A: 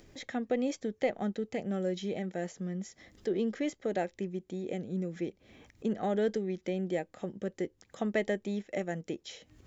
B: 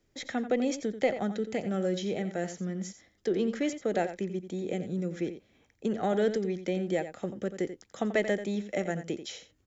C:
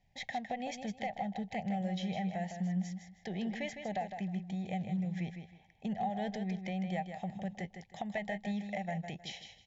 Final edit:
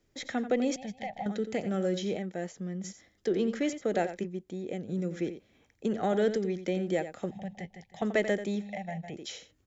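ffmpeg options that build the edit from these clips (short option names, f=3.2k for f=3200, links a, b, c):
-filter_complex "[2:a]asplit=3[a][b][c];[0:a]asplit=2[d][e];[1:a]asplit=6[f][g][h][i][j][k];[f]atrim=end=0.762[l];[a]atrim=start=0.758:end=1.262[m];[g]atrim=start=1.258:end=2.172[n];[d]atrim=start=2.168:end=2.842[o];[h]atrim=start=2.838:end=4.25[p];[e]atrim=start=4.23:end=4.89[q];[i]atrim=start=4.87:end=7.312[r];[b]atrim=start=7.308:end=8.022[s];[j]atrim=start=8.018:end=8.71[t];[c]atrim=start=8.55:end=9.23[u];[k]atrim=start=9.07[v];[l][m]acrossfade=d=0.004:c1=hsin:c2=hsin[w];[w][n]acrossfade=d=0.004:c1=hsin:c2=hsin[x];[x][o]acrossfade=d=0.004:c1=hsin:c2=hsin[y];[y][p]acrossfade=d=0.004:c1=hsin:c2=hsin[z];[z][q]acrossfade=d=0.02:c1=tri:c2=tri[aa];[aa][r]acrossfade=d=0.02:c1=tri:c2=tri[ab];[ab][s]acrossfade=d=0.004:c1=hsin:c2=hsin[ac];[ac][t]acrossfade=d=0.004:c1=hsin:c2=hsin[ad];[ad][u]acrossfade=d=0.16:c1=tri:c2=tri[ae];[ae][v]acrossfade=d=0.16:c1=tri:c2=tri"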